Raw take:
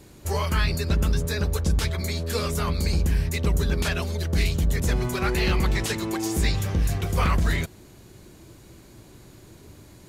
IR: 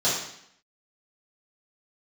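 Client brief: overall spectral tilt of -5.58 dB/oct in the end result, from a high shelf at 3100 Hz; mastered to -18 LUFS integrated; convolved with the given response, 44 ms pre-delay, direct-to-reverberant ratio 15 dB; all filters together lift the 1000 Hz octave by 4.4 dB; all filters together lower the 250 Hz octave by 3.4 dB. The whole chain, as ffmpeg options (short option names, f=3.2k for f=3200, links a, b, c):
-filter_complex "[0:a]equalizer=f=250:t=o:g=-6,equalizer=f=1k:t=o:g=6.5,highshelf=f=3.1k:g=-6,asplit=2[a][b];[1:a]atrim=start_sample=2205,adelay=44[c];[b][c]afir=irnorm=-1:irlink=0,volume=-29dB[d];[a][d]amix=inputs=2:normalize=0,volume=7.5dB"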